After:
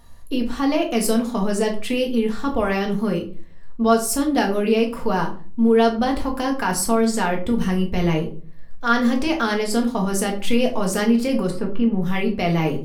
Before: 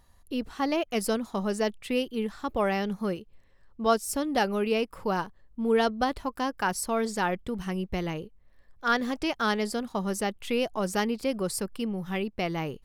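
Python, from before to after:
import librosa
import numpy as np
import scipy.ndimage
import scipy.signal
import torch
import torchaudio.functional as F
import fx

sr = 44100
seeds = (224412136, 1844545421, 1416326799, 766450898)

p1 = fx.over_compress(x, sr, threshold_db=-32.0, ratio=-1.0)
p2 = x + (p1 * librosa.db_to_amplitude(-0.5))
p3 = fx.air_absorb(p2, sr, metres=430.0, at=(11.49, 12.01), fade=0.02)
y = fx.room_shoebox(p3, sr, seeds[0], volume_m3=260.0, walls='furnished', distance_m=1.7)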